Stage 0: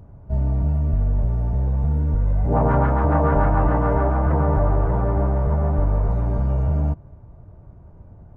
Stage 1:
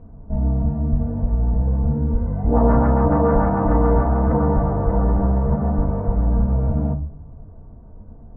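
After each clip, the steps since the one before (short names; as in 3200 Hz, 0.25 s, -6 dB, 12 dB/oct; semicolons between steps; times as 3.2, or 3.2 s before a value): LPF 1300 Hz 12 dB/oct; reverb, pre-delay 4 ms, DRR 1 dB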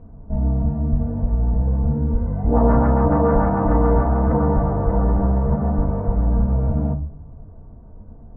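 nothing audible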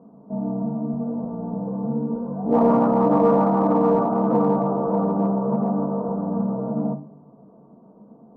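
elliptic band-pass 180–1200 Hz, stop band 40 dB; in parallel at -11.5 dB: hard clip -17 dBFS, distortion -14 dB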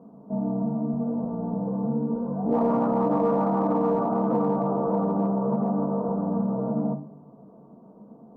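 compressor 2.5:1, threshold -22 dBFS, peak gain reduction 6.5 dB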